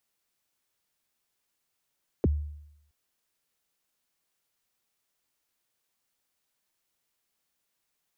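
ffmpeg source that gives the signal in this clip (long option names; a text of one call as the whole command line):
ffmpeg -f lavfi -i "aevalsrc='0.126*pow(10,-3*t/0.8)*sin(2*PI*(520*0.028/log(74/520)*(exp(log(74/520)*min(t,0.028)/0.028)-1)+74*max(t-0.028,0)))':duration=0.67:sample_rate=44100" out.wav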